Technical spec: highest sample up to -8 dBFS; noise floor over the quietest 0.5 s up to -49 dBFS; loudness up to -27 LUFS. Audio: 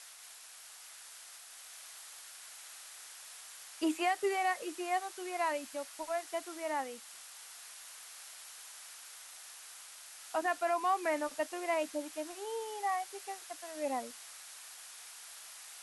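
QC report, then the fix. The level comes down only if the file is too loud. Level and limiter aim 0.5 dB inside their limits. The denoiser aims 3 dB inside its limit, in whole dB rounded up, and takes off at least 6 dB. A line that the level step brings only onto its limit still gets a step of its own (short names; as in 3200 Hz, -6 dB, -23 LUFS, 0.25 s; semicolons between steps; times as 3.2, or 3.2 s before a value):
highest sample -20.0 dBFS: OK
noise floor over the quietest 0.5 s -53 dBFS: OK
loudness -38.5 LUFS: OK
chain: none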